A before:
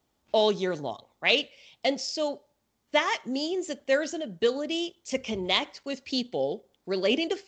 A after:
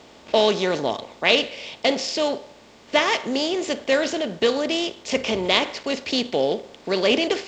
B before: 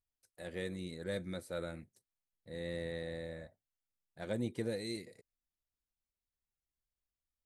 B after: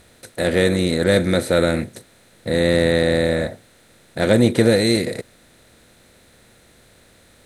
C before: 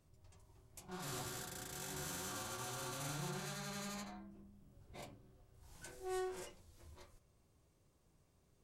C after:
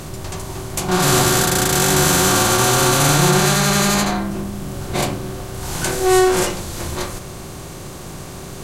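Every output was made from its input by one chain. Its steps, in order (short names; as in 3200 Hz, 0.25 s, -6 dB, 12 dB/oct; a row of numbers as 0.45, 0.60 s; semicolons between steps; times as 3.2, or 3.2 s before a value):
per-bin compression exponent 0.6; normalise peaks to -1.5 dBFS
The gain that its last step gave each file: +2.5, +20.5, +27.0 dB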